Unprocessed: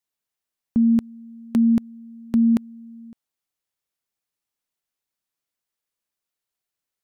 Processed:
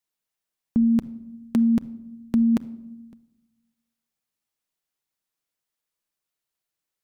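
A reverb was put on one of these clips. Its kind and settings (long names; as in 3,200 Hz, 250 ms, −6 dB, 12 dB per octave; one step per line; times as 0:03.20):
rectangular room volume 2,900 cubic metres, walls furnished, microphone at 0.58 metres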